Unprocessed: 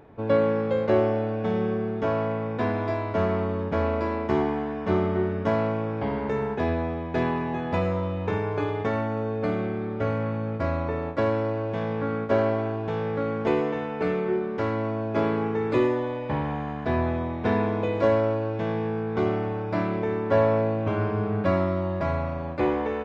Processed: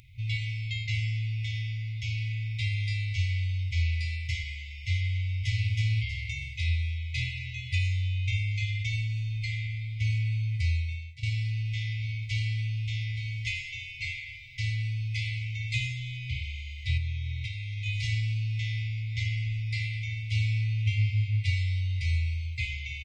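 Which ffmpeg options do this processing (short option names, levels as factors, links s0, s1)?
-filter_complex "[0:a]asplit=2[s0][s1];[s1]afade=t=in:st=5.11:d=0.01,afade=t=out:st=5.69:d=0.01,aecho=0:1:320|640|960|1280|1600:0.794328|0.278015|0.0973052|0.0340568|0.0119199[s2];[s0][s2]amix=inputs=2:normalize=0,asettb=1/sr,asplit=3[s3][s4][s5];[s3]atrim=end=16.974[s6];[s4]atrim=start=16.97:end=17.86,asetpts=PTS-STARTPTS,afade=t=in:d=0.004:c=qsin,afade=t=out:st=0.886:d=0.004:c=qsin,acompressor=threshold=0.0501:ratio=10:attack=3.2:release=140:knee=1:detection=peak[s7];[s5]atrim=start=17.856[s8];[s6][s7]acrossfade=d=0.004:c1=hsin:c2=qsin[s9];[s9][s8]acrossfade=d=0.004:c1=qsin:c2=hsin,asplit=2[s10][s11];[s10]atrim=end=11.23,asetpts=PTS-STARTPTS,afade=t=out:st=10.71:d=0.52:silence=0.149624[s12];[s11]atrim=start=11.23,asetpts=PTS-STARTPTS,afade=t=in:d=0.004:c=hsin:silence=0.149624[s13];[s12][s13]concat=n=2:v=0:a=1,highshelf=f=2900:g=11,afftfilt=real='re*(1-between(b*sr/4096,130,2000))':imag='im*(1-between(b*sr/4096,130,2000))':win_size=4096:overlap=0.75,aecho=1:1:1.9:0.3,volume=1.41"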